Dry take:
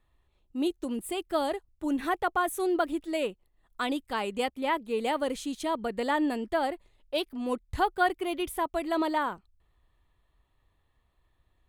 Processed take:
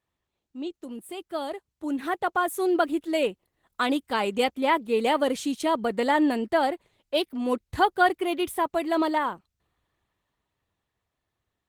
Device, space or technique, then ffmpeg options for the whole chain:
video call: -af "highpass=100,dynaudnorm=framelen=260:gausssize=17:maxgain=13.5dB,volume=-5.5dB" -ar 48000 -c:a libopus -b:a 16k

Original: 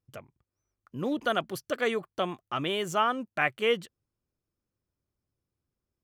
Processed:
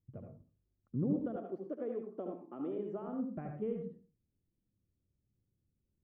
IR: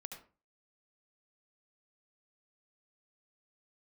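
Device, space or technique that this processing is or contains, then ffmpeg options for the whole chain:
television next door: -filter_complex "[0:a]acompressor=threshold=-30dB:ratio=6,lowpass=290[link_01];[1:a]atrim=start_sample=2205[link_02];[link_01][link_02]afir=irnorm=-1:irlink=0,asettb=1/sr,asplit=3[link_03][link_04][link_05];[link_03]atrim=end=1.364[link_06];[link_04]atrim=start=1.36:end=3.07,asetpts=PTS-STARTPTS,afade=type=in:duration=0.004:curve=qsin,afade=type=out:start_time=1.706:duration=0.004:curve=qsin,highpass=frequency=260:width=0.5412,highpass=frequency=260:width=1.3066[link_07];[link_05]atrim=start=3.066[link_08];[link_06][link_07]acrossfade=duration=0.004:curve1=hsin:curve2=qsin[link_09];[link_09][link_08]acrossfade=duration=0.004:curve1=qsin:curve2=hsin,volume=9.5dB"

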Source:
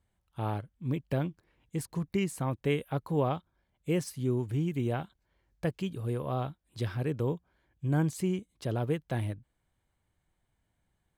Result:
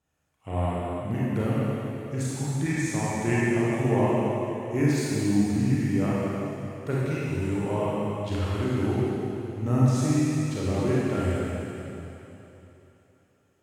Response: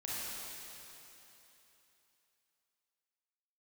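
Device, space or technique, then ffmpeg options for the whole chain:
slowed and reverbed: -filter_complex "[0:a]highpass=130,asetrate=36162,aresample=44100[link_01];[1:a]atrim=start_sample=2205[link_02];[link_01][link_02]afir=irnorm=-1:irlink=0,volume=6dB"

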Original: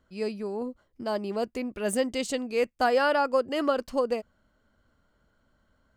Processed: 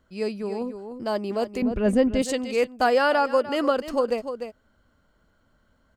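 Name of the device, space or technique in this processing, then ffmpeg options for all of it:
ducked delay: -filter_complex "[0:a]asplit=3[link_01][link_02][link_03];[link_02]adelay=298,volume=-8dB[link_04];[link_03]apad=whole_len=276296[link_05];[link_04][link_05]sidechaincompress=threshold=-29dB:ratio=8:attack=16:release=313[link_06];[link_01][link_06]amix=inputs=2:normalize=0,asettb=1/sr,asplit=3[link_07][link_08][link_09];[link_07]atrim=end=1.624[link_10];[link_08]atrim=start=1.62:end=2.22,asetpts=PTS-STARTPTS,afade=type=in:duration=0.004:curve=qsin,afade=type=out:start_time=0.596:duration=0.004:curve=qsin,aemphasis=mode=reproduction:type=riaa[link_11];[link_09]atrim=start=2.216[link_12];[link_10][link_11]acrossfade=duration=0.004:curve1=hsin:curve2=qsin[link_13];[link_13][link_12]acrossfade=duration=0.004:curve1=qsin:curve2=hsin,volume=3dB"

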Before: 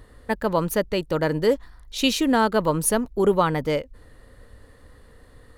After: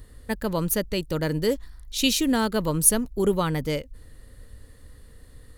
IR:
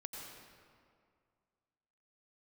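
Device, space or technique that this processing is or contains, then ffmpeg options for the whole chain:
smiley-face EQ: -af "lowshelf=frequency=130:gain=5,equalizer=frequency=890:width_type=o:width=2.1:gain=-7,highshelf=frequency=5400:gain=8.5,volume=-1dB"

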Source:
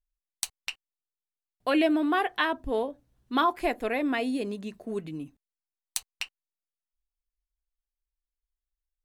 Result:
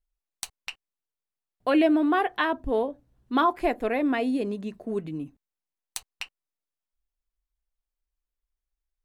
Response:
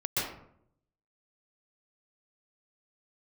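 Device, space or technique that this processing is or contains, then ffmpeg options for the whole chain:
behind a face mask: -af "highshelf=frequency=2000:gain=-8,volume=3.5dB"

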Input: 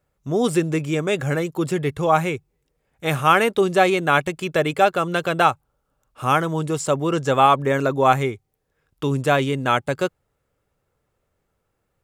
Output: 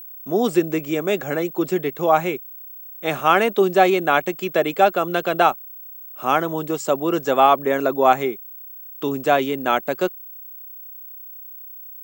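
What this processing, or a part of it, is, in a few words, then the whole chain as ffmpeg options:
old television with a line whistle: -af "highpass=frequency=190:width=0.5412,highpass=frequency=190:width=1.3066,equalizer=frequency=200:width_type=q:width=4:gain=4,equalizer=frequency=360:width_type=q:width=4:gain=4,equalizer=frequency=690:width_type=q:width=4:gain=6,lowpass=frequency=8000:width=0.5412,lowpass=frequency=8000:width=1.3066,aeval=exprs='val(0)+0.02*sin(2*PI*15734*n/s)':channel_layout=same,volume=-1.5dB"

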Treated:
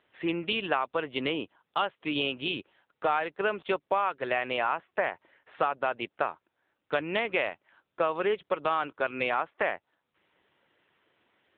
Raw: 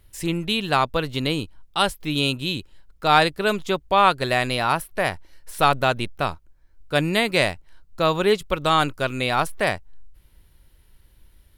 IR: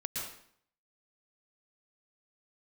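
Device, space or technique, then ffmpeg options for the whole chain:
voicemail: -filter_complex "[0:a]asettb=1/sr,asplit=3[link_01][link_02][link_03];[link_01]atrim=end=4.784[link_04];[link_02]atrim=start=4.78:end=6.02,asetpts=PTS-STARTPTS,afade=type=in:duration=0.004:curve=qsin,afade=type=out:start_time=1.236:duration=0.004:curve=qsin,highshelf=frequency=3900:gain=-4[link_05];[link_03]atrim=start=6.016[link_06];[link_04][link_05]acrossfade=duration=0.004:curve1=hsin:curve2=qsin[link_07];[link_07][link_06]acrossfade=duration=0.004:curve1=qsin:curve2=hsin,highpass=390,lowpass=2900,acompressor=threshold=-26dB:ratio=6,volume=2.5dB" -ar 8000 -c:a libopencore_amrnb -b:a 7950

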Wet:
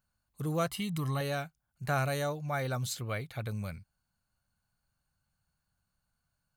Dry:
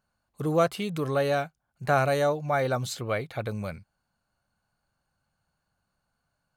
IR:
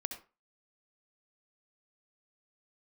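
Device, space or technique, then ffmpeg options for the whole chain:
smiley-face EQ: -filter_complex "[0:a]lowshelf=frequency=180:gain=5.5,equalizer=frequency=490:width_type=o:width=2.3:gain=-6.5,highshelf=frequency=8500:gain=8.5,asettb=1/sr,asplit=3[link_01][link_02][link_03];[link_01]atrim=end=0.704[link_04];[link_02]atrim=start=0.7:end=1.21,asetpts=PTS-STARTPTS,afade=type=in:duration=0.004:curve=qsin,afade=type=out:start_time=0.506:duration=0.004:curve=qsin,aecho=1:1:1:0.59,atrim=end_sample=22491[link_05];[link_03]atrim=start=1.206[link_06];[link_04][link_05]acrossfade=duration=0.004:curve1=hsin:curve2=qsin[link_07];[link_07][link_06]acrossfade=duration=0.004:curve1=qsin:curve2=hsin,volume=-4.5dB"

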